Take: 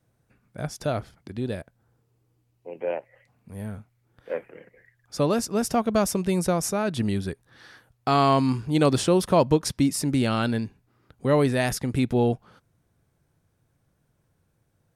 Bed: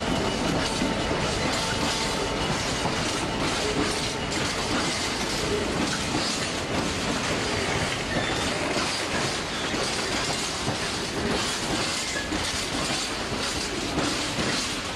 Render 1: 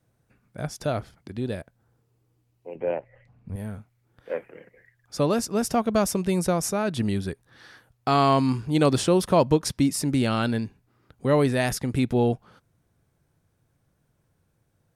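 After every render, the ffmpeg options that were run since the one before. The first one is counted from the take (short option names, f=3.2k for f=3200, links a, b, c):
-filter_complex "[0:a]asettb=1/sr,asplit=3[a][b][c];[a]atrim=end=2.754[d];[b]atrim=start=2.75:end=3.56,asetpts=PTS-STARTPTS,afade=t=in:d=0.004:c=qsin,afade=t=out:st=0.806:d=0.004:c=qsin,aemphasis=mode=reproduction:type=bsi[e];[c]atrim=start=3.556[f];[d][e]acrossfade=d=0.004:c1=hsin:c2=qsin[g];[g][f]acrossfade=d=0.004:c1=qsin:c2=hsin"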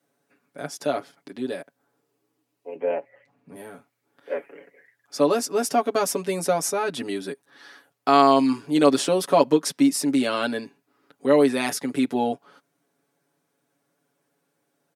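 -af "highpass=f=230:w=0.5412,highpass=f=230:w=1.3066,aecho=1:1:7.1:0.84"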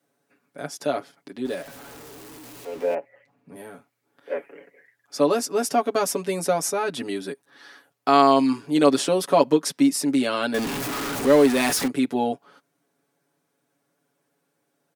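-filter_complex "[0:a]asettb=1/sr,asplit=3[a][b][c];[a]atrim=end=1.454[d];[b]atrim=start=1.45:end=2.95,asetpts=PTS-STARTPTS,afade=t=in:d=0.004:c=qsin,afade=t=out:st=1.496:d=0.004:c=qsin,aeval=exprs='val(0)+0.5*0.0141*sgn(val(0))':c=same[e];[c]atrim=start=2.946[f];[d][e]acrossfade=d=0.004:c1=hsin:c2=qsin[g];[g][f]acrossfade=d=0.004:c1=qsin:c2=hsin,asettb=1/sr,asplit=3[h][i][j];[h]atrim=end=10.544[k];[i]atrim=start=10.54:end=11.88,asetpts=PTS-STARTPTS,afade=t=in:d=0.004:c=qsin,afade=t=out:st=1.336:d=0.004:c=qsin,aeval=exprs='val(0)+0.5*0.075*sgn(val(0))':c=same[l];[j]atrim=start=11.876[m];[k][l]acrossfade=d=0.004:c1=hsin:c2=qsin[n];[n][m]acrossfade=d=0.004:c1=qsin:c2=hsin"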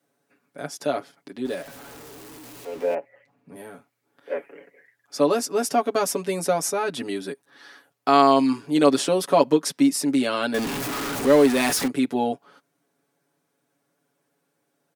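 -af anull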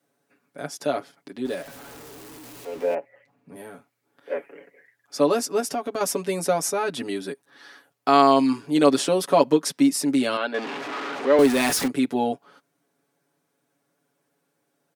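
-filter_complex "[0:a]asettb=1/sr,asplit=3[a][b][c];[a]atrim=end=5.604[d];[b]atrim=start=5.6:end=6.01,asetpts=PTS-STARTPTS,afade=t=in:d=0.004:c=qsin,afade=t=out:st=0.406:d=0.004:c=qsin,acompressor=threshold=-26dB:ratio=2.5:attack=3.2:release=140:knee=1:detection=peak[e];[c]atrim=start=6.006[f];[d][e]acrossfade=d=0.004:c1=hsin:c2=qsin[g];[g][f]acrossfade=d=0.004:c1=qsin:c2=hsin,asettb=1/sr,asplit=3[h][i][j];[h]atrim=end=10.374[k];[i]atrim=start=10.37:end=11.39,asetpts=PTS-STARTPTS,afade=t=in:d=0.004:c=qsin,afade=t=out:st=1.016:d=0.004:c=qsin,highpass=380,lowpass=3.2k[l];[j]atrim=start=11.386[m];[k][l]acrossfade=d=0.004:c1=hsin:c2=qsin[n];[n][m]acrossfade=d=0.004:c1=qsin:c2=hsin"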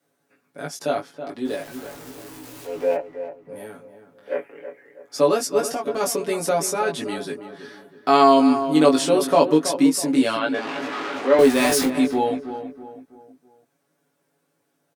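-filter_complex "[0:a]asplit=2[a][b];[b]adelay=19,volume=-3dB[c];[a][c]amix=inputs=2:normalize=0,asplit=2[d][e];[e]adelay=325,lowpass=f=1.6k:p=1,volume=-10dB,asplit=2[f][g];[g]adelay=325,lowpass=f=1.6k:p=1,volume=0.42,asplit=2[h][i];[i]adelay=325,lowpass=f=1.6k:p=1,volume=0.42,asplit=2[j][k];[k]adelay=325,lowpass=f=1.6k:p=1,volume=0.42[l];[d][f][h][j][l]amix=inputs=5:normalize=0"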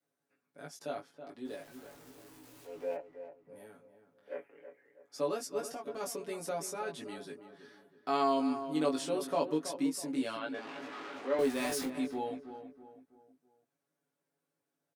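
-af "volume=-15.5dB"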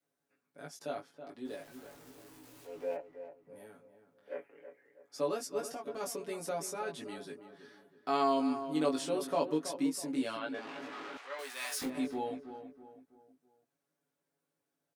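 -filter_complex "[0:a]asettb=1/sr,asplit=3[a][b][c];[a]atrim=end=11.174[d];[b]atrim=start=11.17:end=11.82,asetpts=PTS-STARTPTS,afade=t=in:d=0.004:c=qsin,afade=t=out:st=0.646:d=0.004:c=qsin,highpass=1.2k[e];[c]atrim=start=11.816[f];[d][e]acrossfade=d=0.004:c1=hsin:c2=qsin[g];[g][f]acrossfade=d=0.004:c1=qsin:c2=hsin"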